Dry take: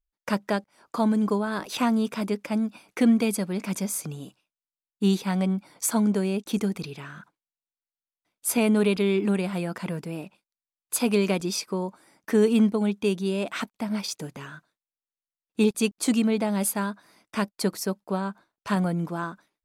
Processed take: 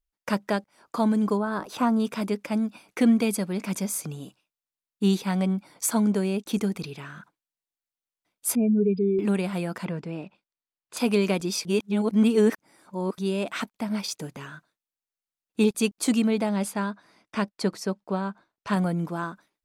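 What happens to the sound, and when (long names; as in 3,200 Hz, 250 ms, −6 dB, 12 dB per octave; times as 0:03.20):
0:01.37–0:02.00: high shelf with overshoot 1,700 Hz −6.5 dB, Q 1.5
0:08.55–0:09.19: expanding power law on the bin magnitudes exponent 2.5
0:09.85–0:10.97: high-frequency loss of the air 120 metres
0:11.65–0:13.18: reverse
0:16.49–0:18.73: high-frequency loss of the air 60 metres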